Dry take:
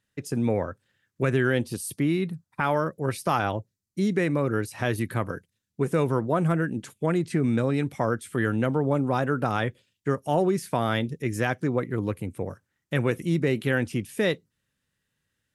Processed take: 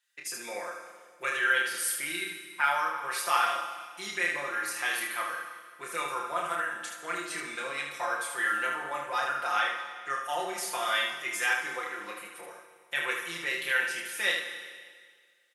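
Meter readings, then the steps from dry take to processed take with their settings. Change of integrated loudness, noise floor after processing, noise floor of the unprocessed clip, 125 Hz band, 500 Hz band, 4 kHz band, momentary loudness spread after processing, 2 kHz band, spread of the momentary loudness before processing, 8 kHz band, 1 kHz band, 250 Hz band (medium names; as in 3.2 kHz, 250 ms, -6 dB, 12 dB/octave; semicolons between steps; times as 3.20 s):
-3.5 dB, -58 dBFS, -80 dBFS, -32.5 dB, -12.5 dB, +5.5 dB, 12 LU, +4.5 dB, 8 LU, +5.5 dB, 0.0 dB, -22.5 dB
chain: high-pass 1.4 kHz 12 dB/octave; comb 5.7 ms, depth 85%; early reflections 29 ms -4 dB, 76 ms -5 dB; Schroeder reverb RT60 1.8 s, combs from 28 ms, DRR 6 dB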